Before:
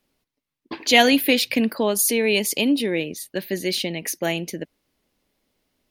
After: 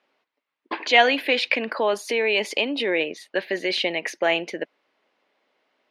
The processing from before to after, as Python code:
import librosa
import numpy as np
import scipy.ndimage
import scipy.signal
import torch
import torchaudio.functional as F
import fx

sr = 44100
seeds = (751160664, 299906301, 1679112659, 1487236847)

p1 = fx.over_compress(x, sr, threshold_db=-24.0, ratio=-0.5)
p2 = x + (p1 * 10.0 ** (-2.0 / 20.0))
p3 = fx.bandpass_edges(p2, sr, low_hz=580.0, high_hz=2400.0)
y = p3 * 10.0 ** (2.0 / 20.0)